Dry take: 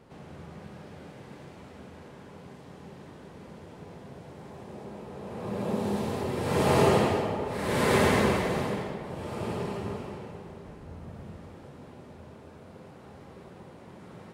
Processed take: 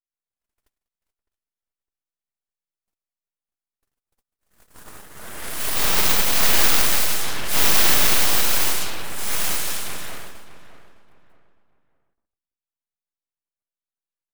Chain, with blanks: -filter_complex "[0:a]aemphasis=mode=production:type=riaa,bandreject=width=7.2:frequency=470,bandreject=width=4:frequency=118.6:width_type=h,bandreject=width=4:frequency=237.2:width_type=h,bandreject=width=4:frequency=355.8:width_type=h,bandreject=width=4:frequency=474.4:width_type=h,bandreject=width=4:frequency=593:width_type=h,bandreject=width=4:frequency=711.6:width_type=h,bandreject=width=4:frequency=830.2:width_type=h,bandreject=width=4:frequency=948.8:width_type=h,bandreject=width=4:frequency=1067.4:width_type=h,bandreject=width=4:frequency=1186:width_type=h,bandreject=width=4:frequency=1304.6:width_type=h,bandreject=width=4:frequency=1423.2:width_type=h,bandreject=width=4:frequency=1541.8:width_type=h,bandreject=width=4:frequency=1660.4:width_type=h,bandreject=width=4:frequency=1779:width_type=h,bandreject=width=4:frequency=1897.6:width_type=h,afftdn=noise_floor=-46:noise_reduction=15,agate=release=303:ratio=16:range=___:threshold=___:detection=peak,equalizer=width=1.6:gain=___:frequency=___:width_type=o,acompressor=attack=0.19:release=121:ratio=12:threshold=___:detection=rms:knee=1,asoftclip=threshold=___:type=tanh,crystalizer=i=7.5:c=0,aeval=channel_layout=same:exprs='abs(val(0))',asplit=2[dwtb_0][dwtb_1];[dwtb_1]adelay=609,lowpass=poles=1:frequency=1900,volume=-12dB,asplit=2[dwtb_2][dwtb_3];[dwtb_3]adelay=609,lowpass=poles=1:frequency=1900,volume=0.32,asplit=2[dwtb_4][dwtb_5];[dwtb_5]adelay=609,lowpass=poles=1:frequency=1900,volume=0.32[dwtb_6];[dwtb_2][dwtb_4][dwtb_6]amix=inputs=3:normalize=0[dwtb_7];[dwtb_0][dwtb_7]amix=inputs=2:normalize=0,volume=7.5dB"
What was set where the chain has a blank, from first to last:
-54dB, -47dB, 4.5, 1500, -27dB, -30dB